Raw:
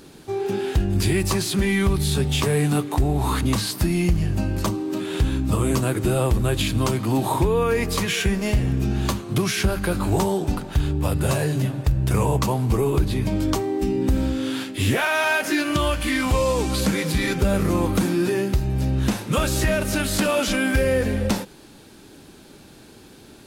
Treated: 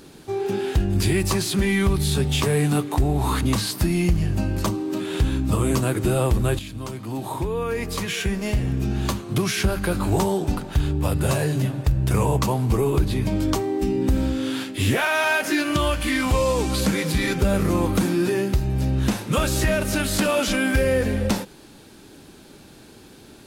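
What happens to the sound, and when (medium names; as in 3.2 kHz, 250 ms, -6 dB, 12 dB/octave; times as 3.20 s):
6.59–10.40 s: fade in equal-power, from -13.5 dB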